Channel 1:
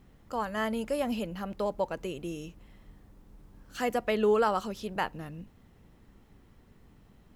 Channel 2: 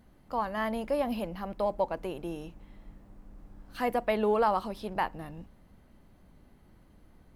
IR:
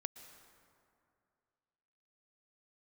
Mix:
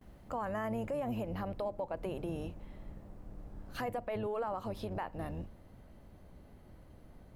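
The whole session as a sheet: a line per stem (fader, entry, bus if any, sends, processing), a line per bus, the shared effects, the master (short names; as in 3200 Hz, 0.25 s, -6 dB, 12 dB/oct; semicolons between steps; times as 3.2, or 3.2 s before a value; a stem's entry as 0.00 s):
-2.5 dB, 0.00 s, no send, auto duck -16 dB, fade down 2.00 s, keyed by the second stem
0.0 dB, 0.00 s, no send, octaver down 1 oct, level 0 dB; compressor, threshold -34 dBFS, peak gain reduction 12.5 dB; bell 600 Hz +5.5 dB 0.73 oct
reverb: off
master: gate with hold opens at -50 dBFS; limiter -28.5 dBFS, peak gain reduction 9 dB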